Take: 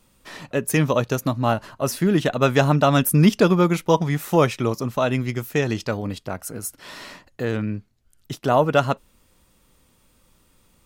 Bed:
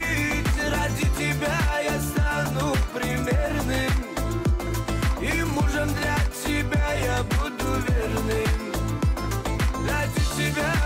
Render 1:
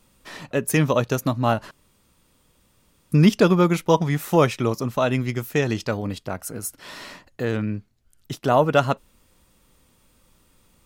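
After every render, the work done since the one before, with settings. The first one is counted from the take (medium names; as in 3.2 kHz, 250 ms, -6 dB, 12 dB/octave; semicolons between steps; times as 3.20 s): 1.71–3.12 s: room tone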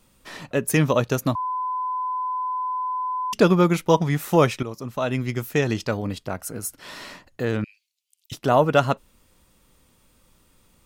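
1.35–3.33 s: bleep 1.01 kHz -23.5 dBFS; 4.63–5.40 s: fade in linear, from -12.5 dB; 7.64–8.32 s: steep high-pass 2.4 kHz 48 dB/octave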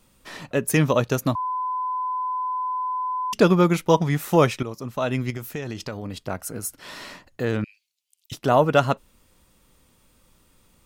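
5.30–6.19 s: compression, threshold -27 dBFS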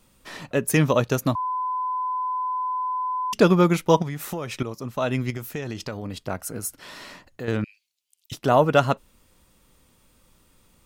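4.02–4.56 s: compression 10:1, threshold -26 dBFS; 6.83–7.48 s: compression 1.5:1, threshold -41 dBFS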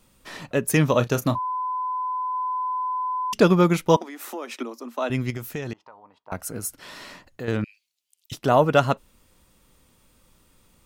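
0.89–2.34 s: doubling 33 ms -13 dB; 3.96–5.10 s: rippled Chebyshev high-pass 230 Hz, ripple 3 dB; 5.73–6.32 s: band-pass filter 930 Hz, Q 5.5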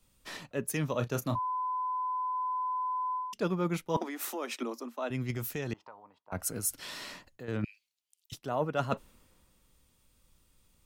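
reverse; compression 4:1, threshold -32 dBFS, peak gain reduction 17.5 dB; reverse; three bands expanded up and down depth 40%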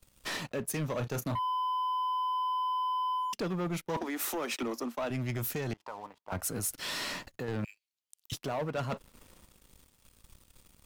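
compression 2:1, threshold -45 dBFS, peak gain reduction 11.5 dB; waveshaping leveller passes 3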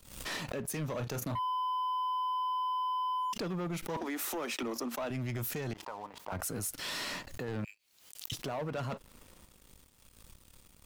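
peak limiter -31 dBFS, peak gain reduction 4.5 dB; swell ahead of each attack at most 81 dB/s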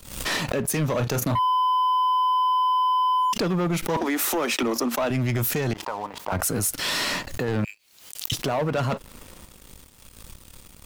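trim +12 dB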